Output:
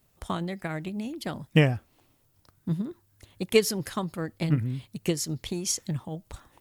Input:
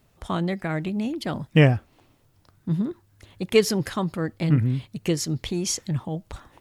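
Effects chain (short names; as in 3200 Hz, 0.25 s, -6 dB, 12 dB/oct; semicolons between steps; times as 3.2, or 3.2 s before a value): transient shaper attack +6 dB, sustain +1 dB; high shelf 6900 Hz +11 dB; gain -7.5 dB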